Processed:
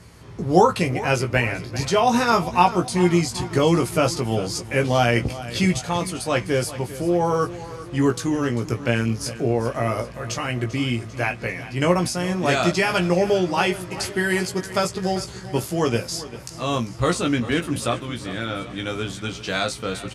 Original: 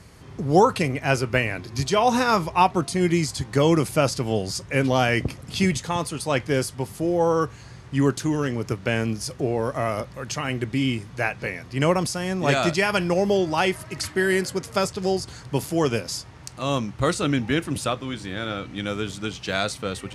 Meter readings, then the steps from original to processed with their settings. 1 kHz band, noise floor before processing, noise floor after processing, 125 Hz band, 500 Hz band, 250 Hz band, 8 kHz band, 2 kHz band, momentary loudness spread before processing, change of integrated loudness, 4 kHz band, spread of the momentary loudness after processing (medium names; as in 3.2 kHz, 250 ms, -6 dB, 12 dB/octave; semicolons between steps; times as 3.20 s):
+1.5 dB, -44 dBFS, -38 dBFS, +1.5 dB, +1.0 dB, +1.5 dB, +1.5 dB, +1.0 dB, 9 LU, +1.5 dB, +1.5 dB, 9 LU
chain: doubling 17 ms -4.5 dB; feedback delay 394 ms, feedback 57%, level -15.5 dB